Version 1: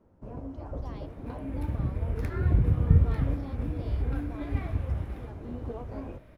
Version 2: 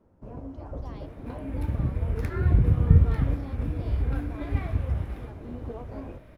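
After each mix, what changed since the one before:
second sound +3.0 dB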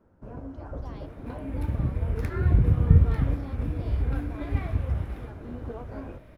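first sound: add peaking EQ 1.5 kHz +7.5 dB 0.45 oct

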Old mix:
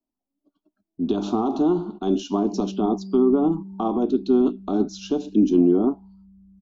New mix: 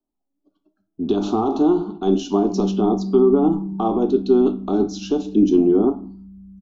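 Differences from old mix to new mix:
background +8.0 dB; reverb: on, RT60 0.45 s

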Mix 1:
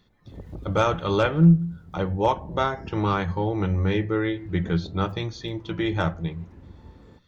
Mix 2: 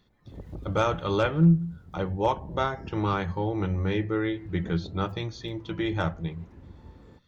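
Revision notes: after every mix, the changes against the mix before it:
reverb: off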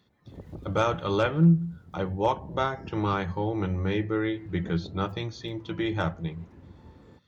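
master: add high-pass 75 Hz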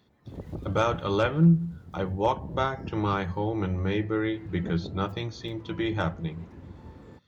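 background +4.5 dB

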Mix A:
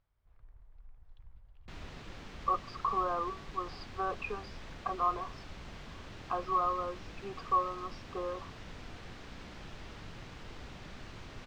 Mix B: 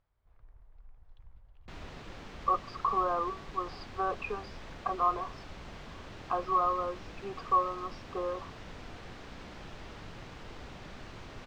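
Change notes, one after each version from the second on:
master: add peaking EQ 640 Hz +3.5 dB 2.4 oct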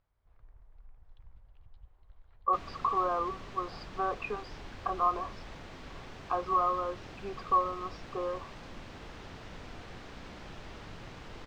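second sound: entry +0.85 s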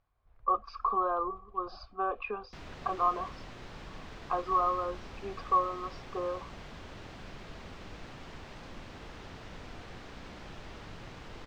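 speech: entry -2.00 s

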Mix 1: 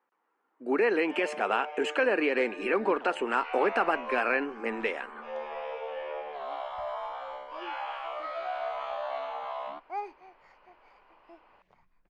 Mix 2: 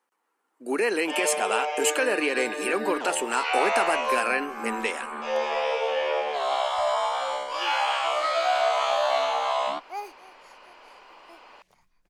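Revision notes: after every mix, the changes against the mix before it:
first sound +10.5 dB; master: remove low-pass 2.2 kHz 12 dB/octave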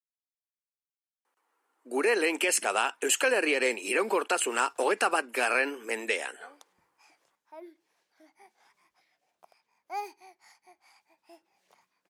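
speech: entry +1.25 s; first sound: muted; master: add high-pass 290 Hz 12 dB/octave

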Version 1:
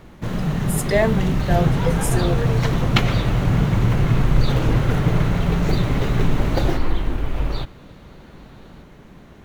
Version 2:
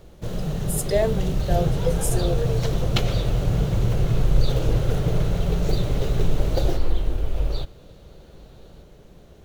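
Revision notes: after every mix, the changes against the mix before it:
master: add ten-band graphic EQ 125 Hz -3 dB, 250 Hz -10 dB, 500 Hz +4 dB, 1 kHz -9 dB, 2 kHz -10 dB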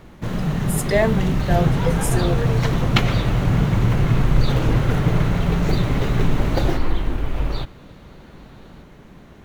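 master: add ten-band graphic EQ 125 Hz +3 dB, 250 Hz +10 dB, 500 Hz -4 dB, 1 kHz +9 dB, 2 kHz +10 dB

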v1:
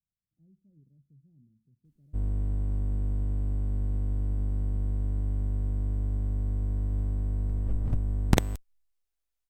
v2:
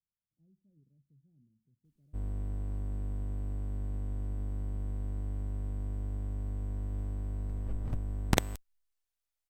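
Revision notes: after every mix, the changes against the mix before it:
master: add bass shelf 440 Hz -7 dB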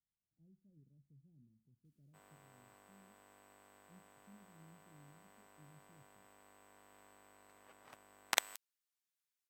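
background: add high-pass 1.1 kHz 12 dB/octave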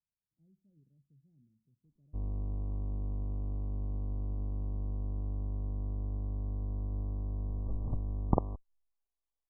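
background: remove high-pass 1.1 kHz 12 dB/octave; master: add brick-wall FIR low-pass 1.2 kHz

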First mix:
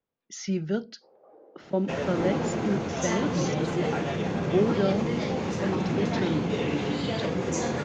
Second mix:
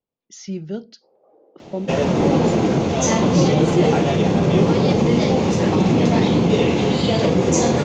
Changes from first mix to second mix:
second sound +12.0 dB; master: add peaking EQ 1.6 kHz -8 dB 0.98 oct

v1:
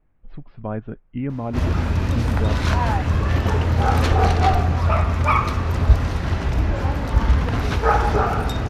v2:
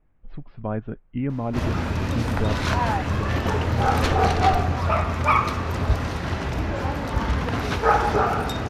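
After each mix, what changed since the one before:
background: add high-pass 150 Hz 6 dB/octave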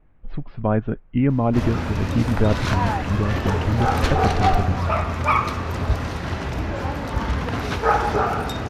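speech +7.5 dB

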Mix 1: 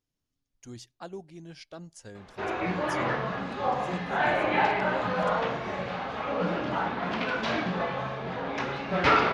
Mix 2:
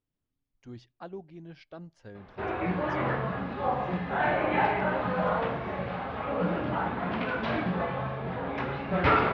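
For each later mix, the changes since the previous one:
background: add peaking EQ 83 Hz +8 dB 1.3 oct; master: add distance through air 290 m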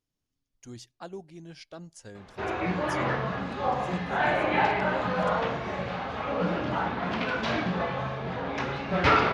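master: remove distance through air 290 m

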